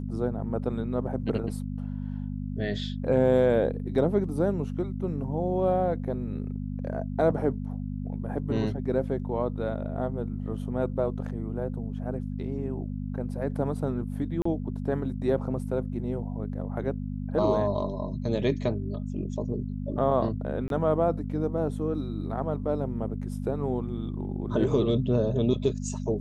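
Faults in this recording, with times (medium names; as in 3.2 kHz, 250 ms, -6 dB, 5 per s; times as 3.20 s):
hum 50 Hz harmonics 5 -33 dBFS
14.42–14.45 s: dropout 34 ms
20.68–20.70 s: dropout 22 ms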